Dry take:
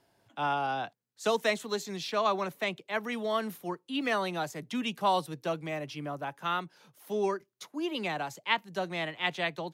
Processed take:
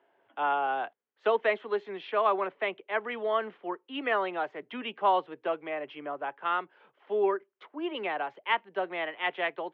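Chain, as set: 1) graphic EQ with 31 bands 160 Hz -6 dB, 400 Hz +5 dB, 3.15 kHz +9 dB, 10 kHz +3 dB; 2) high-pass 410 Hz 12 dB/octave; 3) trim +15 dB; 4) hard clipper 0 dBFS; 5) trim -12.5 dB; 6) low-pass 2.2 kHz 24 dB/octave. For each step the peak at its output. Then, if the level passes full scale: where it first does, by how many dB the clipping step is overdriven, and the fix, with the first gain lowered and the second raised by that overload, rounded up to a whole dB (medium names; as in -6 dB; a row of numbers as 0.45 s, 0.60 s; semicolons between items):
-10.0 dBFS, -10.0 dBFS, +5.0 dBFS, 0.0 dBFS, -12.5 dBFS, -14.0 dBFS; step 3, 5.0 dB; step 3 +10 dB, step 5 -7.5 dB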